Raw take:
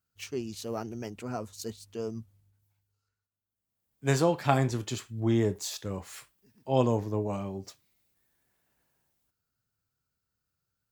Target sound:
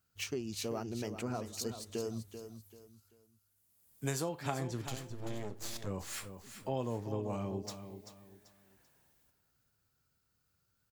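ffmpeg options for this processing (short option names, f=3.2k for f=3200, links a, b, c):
-filter_complex "[0:a]asettb=1/sr,asplit=3[a][b][c];[a]atrim=end=2.004[d];[b]atrim=start=2:end=4.29,asetpts=PTS-STARTPTS,afade=t=in:d=0.004:c=qsin,afade=t=out:st=2.286:d=0.004:c=qsin,equalizer=f=12k:w=0.47:g=13.5[e];[c]atrim=start=4.286[f];[d][e]acrossfade=d=0.004:c1=hsin:c2=qsin[g];[g][f]acrossfade=d=0.004:c1=qsin:c2=hsin,acompressor=threshold=-41dB:ratio=4,asettb=1/sr,asplit=3[h][i][j];[h]atrim=end=4.874[k];[i]atrim=start=4.87:end=5.87,asetpts=PTS-STARTPTS,afade=t=in:d=0.004:c=qsin,afade=t=out:st=0.996:d=0.004:c=qsin,aeval=exprs='max(val(0),0)':c=same[l];[j]atrim=start=5.866[m];[k][l]acrossfade=d=0.004:c1=hsin:c2=qsin[n];[n][m]acrossfade=d=0.004:c1=qsin:c2=hsin,asplit=2[o][p];[p]aecho=0:1:388|776|1164:0.316|0.098|0.0304[q];[o][q]amix=inputs=2:normalize=0,volume=5dB"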